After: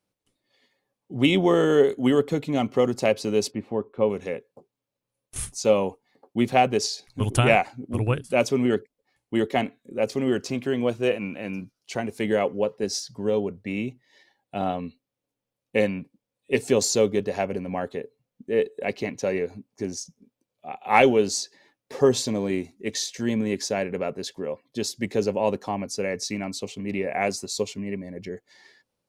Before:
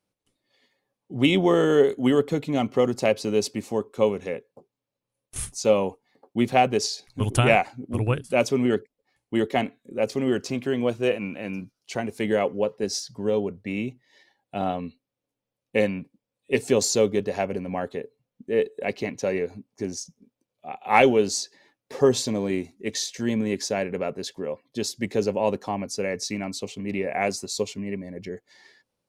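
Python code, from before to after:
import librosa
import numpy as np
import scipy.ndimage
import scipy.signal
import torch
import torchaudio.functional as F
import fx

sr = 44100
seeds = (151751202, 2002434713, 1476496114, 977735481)

y = fx.air_absorb(x, sr, metres=460.0, at=(3.5, 4.09), fade=0.02)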